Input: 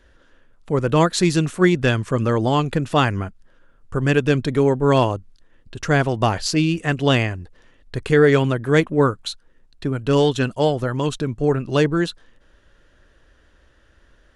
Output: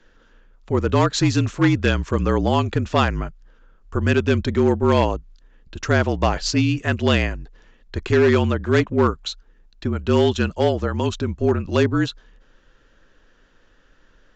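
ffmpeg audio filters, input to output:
ffmpeg -i in.wav -af "asoftclip=type=hard:threshold=-10.5dB,afreqshift=-41,aresample=16000,aresample=44100" out.wav

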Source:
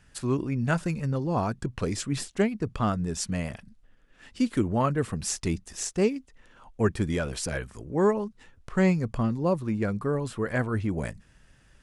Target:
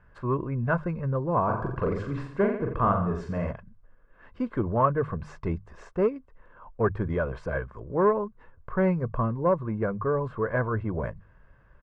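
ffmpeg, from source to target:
ffmpeg -i in.wav -filter_complex "[0:a]bandreject=frequency=50:width_type=h:width=6,bandreject=frequency=100:width_type=h:width=6,bandreject=frequency=150:width_type=h:width=6,aecho=1:1:1.9:0.44,asoftclip=type=tanh:threshold=-15dB,lowpass=frequency=1200:width_type=q:width=1.8,asplit=3[link_01][link_02][link_03];[link_01]afade=type=out:start_time=1.47:duration=0.02[link_04];[link_02]aecho=1:1:40|86|138.9|199.7|269.7:0.631|0.398|0.251|0.158|0.1,afade=type=in:start_time=1.47:duration=0.02,afade=type=out:start_time=3.51:duration=0.02[link_05];[link_03]afade=type=in:start_time=3.51:duration=0.02[link_06];[link_04][link_05][link_06]amix=inputs=3:normalize=0" out.wav

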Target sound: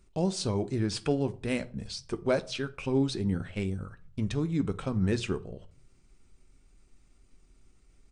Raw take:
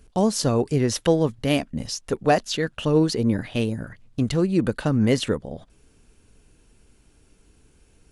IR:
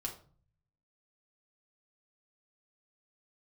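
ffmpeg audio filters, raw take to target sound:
-filter_complex "[0:a]asetrate=38170,aresample=44100,atempo=1.15535,asplit=2[link_01][link_02];[link_02]asubboost=boost=2.5:cutoff=110[link_03];[1:a]atrim=start_sample=2205,adelay=11[link_04];[link_03][link_04]afir=irnorm=-1:irlink=0,volume=-10.5dB[link_05];[link_01][link_05]amix=inputs=2:normalize=0,volume=-8.5dB"

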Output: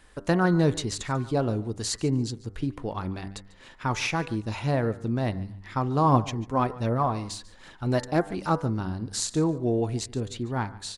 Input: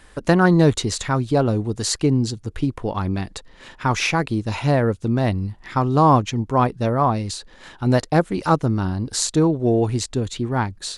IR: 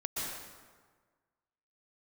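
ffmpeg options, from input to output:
-filter_complex "[0:a]bandreject=frequency=97.85:width_type=h:width=4,bandreject=frequency=195.7:width_type=h:width=4,bandreject=frequency=293.55:width_type=h:width=4,bandreject=frequency=391.4:width_type=h:width=4,bandreject=frequency=489.25:width_type=h:width=4,bandreject=frequency=587.1:width_type=h:width=4,bandreject=frequency=684.95:width_type=h:width=4,bandreject=frequency=782.8:width_type=h:width=4,bandreject=frequency=880.65:width_type=h:width=4,bandreject=frequency=978.5:width_type=h:width=4,bandreject=frequency=1076.35:width_type=h:width=4,bandreject=frequency=1174.2:width_type=h:width=4,bandreject=frequency=1272.05:width_type=h:width=4,bandreject=frequency=1369.9:width_type=h:width=4,bandreject=frequency=1467.75:width_type=h:width=4,bandreject=frequency=1565.6:width_type=h:width=4,bandreject=frequency=1663.45:width_type=h:width=4,bandreject=frequency=1761.3:width_type=h:width=4,bandreject=frequency=1859.15:width_type=h:width=4,bandreject=frequency=1957:width_type=h:width=4,bandreject=frequency=2054.85:width_type=h:width=4,bandreject=frequency=2152.7:width_type=h:width=4,asplit=3[link_01][link_02][link_03];[link_01]afade=type=out:start_time=6.05:duration=0.02[link_04];[link_02]aphaser=in_gain=1:out_gain=1:delay=4.2:decay=0.33:speed=1.3:type=triangular,afade=type=in:start_time=6.05:duration=0.02,afade=type=out:start_time=8.35:duration=0.02[link_05];[link_03]afade=type=in:start_time=8.35:duration=0.02[link_06];[link_04][link_05][link_06]amix=inputs=3:normalize=0,aecho=1:1:144|288:0.1|0.021,volume=-7dB"

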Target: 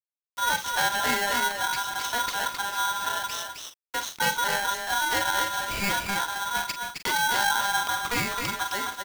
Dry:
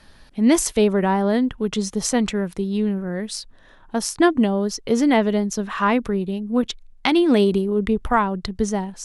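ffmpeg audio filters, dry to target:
ffmpeg -i in.wav -filter_complex "[0:a]highpass=54,highshelf=frequency=3000:gain=8.5,bandreject=frequency=50:width_type=h:width=6,bandreject=frequency=100:width_type=h:width=6,bandreject=frequency=150:width_type=h:width=6,bandreject=frequency=200:width_type=h:width=6,aresample=11025,asoftclip=type=tanh:threshold=-16.5dB,aresample=44100,acrusher=bits=5:mix=0:aa=0.000001,asplit=2[link_01][link_02];[link_02]adelay=43,volume=-9dB[link_03];[link_01][link_03]amix=inputs=2:normalize=0,asplit=2[link_04][link_05];[link_05]aecho=0:1:263:0.562[link_06];[link_04][link_06]amix=inputs=2:normalize=0,aeval=exprs='val(0)*sgn(sin(2*PI*1200*n/s))':channel_layout=same,volume=-5.5dB" out.wav

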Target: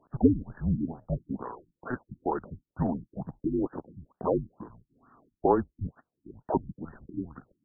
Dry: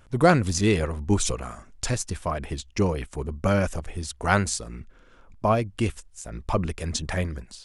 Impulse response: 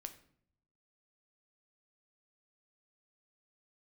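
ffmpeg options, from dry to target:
-af "highpass=frequency=380:width_type=q:width=0.5412,highpass=frequency=380:width_type=q:width=1.307,lowpass=frequency=3500:width_type=q:width=0.5176,lowpass=frequency=3500:width_type=q:width=0.7071,lowpass=frequency=3500:width_type=q:width=1.932,afreqshift=-250,afftfilt=real='re*lt(b*sr/1024,330*pow(1900/330,0.5+0.5*sin(2*PI*2.2*pts/sr)))':imag='im*lt(b*sr/1024,330*pow(1900/330,0.5+0.5*sin(2*PI*2.2*pts/sr)))':win_size=1024:overlap=0.75"

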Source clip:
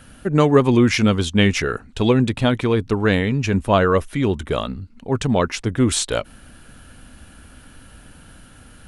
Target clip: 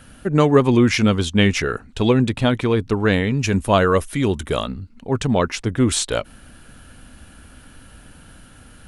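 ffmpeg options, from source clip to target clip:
ffmpeg -i in.wav -filter_complex "[0:a]asettb=1/sr,asplit=3[link_01][link_02][link_03];[link_01]atrim=end=3.374[link_04];[link_02]atrim=start=3.37:end=4.65,asetpts=PTS-STARTPTS,afade=type=in:duration=0.004:curve=qsin,afade=type=out:start_time=1.276:duration=0.004:curve=qsin,highshelf=frequency=6100:gain=11.5[link_05];[link_03]atrim=start=4.646[link_06];[link_04][link_05]acrossfade=duration=0.004:curve1=hsin:curve2=qsin[link_07];[link_07][link_06]acrossfade=duration=0.004:curve1=qsin:curve2=hsin" out.wav

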